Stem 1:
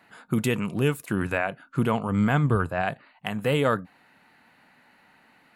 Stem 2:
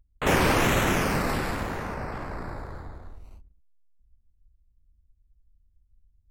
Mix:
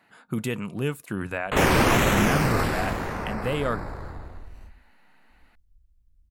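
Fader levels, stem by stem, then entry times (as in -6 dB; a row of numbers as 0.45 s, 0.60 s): -4.0 dB, +2.0 dB; 0.00 s, 1.30 s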